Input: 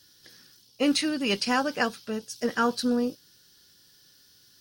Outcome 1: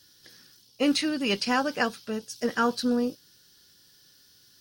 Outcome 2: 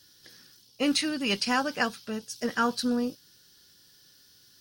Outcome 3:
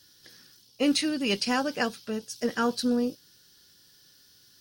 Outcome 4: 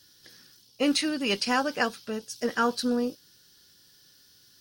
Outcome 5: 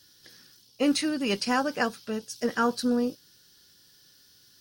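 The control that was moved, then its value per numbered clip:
dynamic bell, frequency: 9.5 kHz, 430 Hz, 1.2 kHz, 140 Hz, 3.2 kHz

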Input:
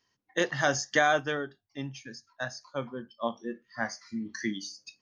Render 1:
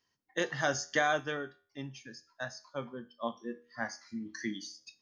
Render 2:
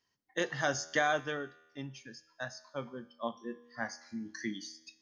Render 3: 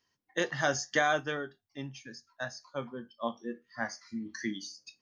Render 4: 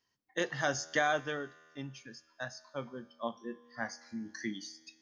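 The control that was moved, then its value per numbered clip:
feedback comb, decay: 0.43 s, 1.1 s, 0.16 s, 2.2 s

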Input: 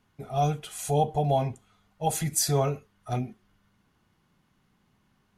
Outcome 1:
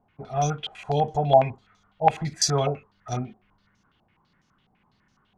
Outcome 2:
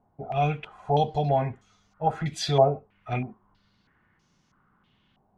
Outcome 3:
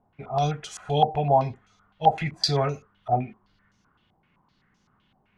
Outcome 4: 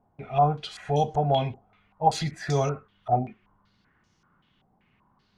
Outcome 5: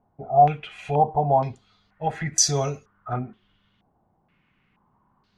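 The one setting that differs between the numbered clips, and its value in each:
step-sequenced low-pass, rate: 12 Hz, 3.1 Hz, 7.8 Hz, 5.2 Hz, 2.1 Hz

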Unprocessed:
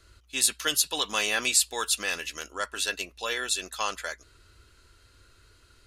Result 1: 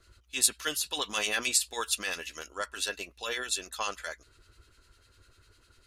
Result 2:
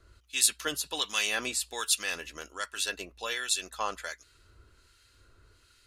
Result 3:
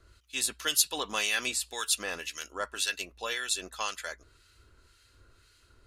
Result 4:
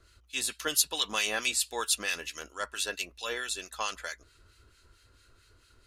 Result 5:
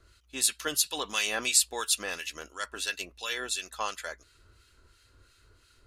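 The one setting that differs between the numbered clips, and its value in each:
harmonic tremolo, rate: 10 Hz, 1.3 Hz, 1.9 Hz, 4.5 Hz, 2.9 Hz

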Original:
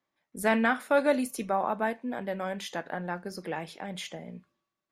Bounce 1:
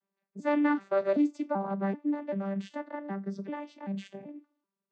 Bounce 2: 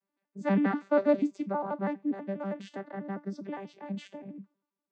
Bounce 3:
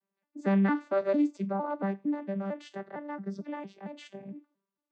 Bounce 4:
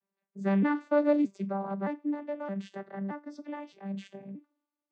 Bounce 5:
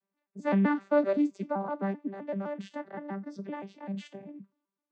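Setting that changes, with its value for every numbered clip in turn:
vocoder on a broken chord, a note every: 386 ms, 81 ms, 227 ms, 620 ms, 129 ms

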